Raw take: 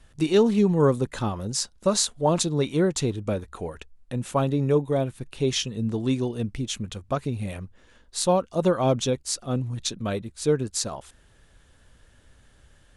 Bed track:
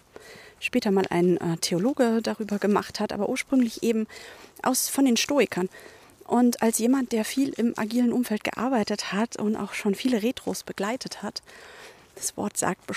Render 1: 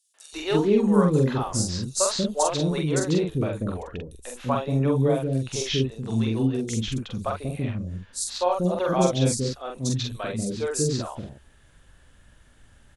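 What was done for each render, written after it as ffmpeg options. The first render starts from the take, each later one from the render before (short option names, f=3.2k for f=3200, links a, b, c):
-filter_complex "[0:a]asplit=2[a][b];[b]adelay=45,volume=-3dB[c];[a][c]amix=inputs=2:normalize=0,acrossover=split=450|4900[d][e][f];[e]adelay=140[g];[d]adelay=330[h];[h][g][f]amix=inputs=3:normalize=0"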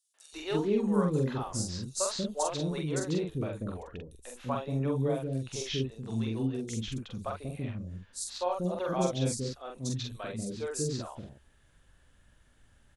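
-af "volume=-8dB"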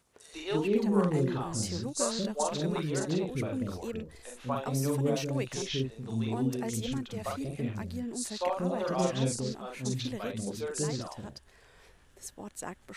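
-filter_complex "[1:a]volume=-14.5dB[a];[0:a][a]amix=inputs=2:normalize=0"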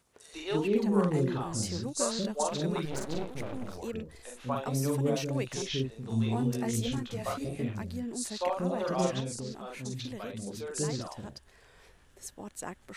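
-filter_complex "[0:a]asettb=1/sr,asplit=3[a][b][c];[a]atrim=end=2.854[d];[b]atrim=start=2.85:end=3.78,asetpts=PTS-STARTPTS,afade=t=in:d=0.004:c=qsin,afade=t=out:st=0.926:d=0.004:c=qsin,aeval=exprs='max(val(0),0)':c=same[e];[c]atrim=start=3.776[f];[d][e]acrossfade=d=0.004:c1=hsin:c2=qsin[g];[g][f]acrossfade=d=0.004:c1=qsin:c2=hsin,asettb=1/sr,asplit=3[h][i][j];[h]atrim=end=6.094[k];[i]atrim=start=6.09:end=7.64,asetpts=PTS-STARTPTS,afade=t=in:d=0.004:c=qsin,afade=t=out:st=1.546:d=0.004:c=qsin,asplit=2[l][m];[m]adelay=17,volume=-3dB[n];[l][n]amix=inputs=2:normalize=0,atrim=end_sample=68355[o];[j]atrim=start=7.636[p];[k][o]acrossfade=d=0.004:c1=hsin:c2=qsin[q];[q][p]acrossfade=d=0.004:c1=qsin:c2=hsin,asettb=1/sr,asplit=3[r][s][t];[r]atrim=end=9.204[u];[s]atrim=start=9.2:end=10.76,asetpts=PTS-STARTPTS,afade=t=in:d=0.004:c=qsin,afade=t=out:st=1.556:d=0.004:c=qsin,acompressor=threshold=-37dB:ratio=2:attack=3.2:release=140:knee=1:detection=peak[v];[t]atrim=start=10.756[w];[u][v]acrossfade=d=0.004:c1=hsin:c2=qsin[x];[x][w]acrossfade=d=0.004:c1=qsin:c2=hsin"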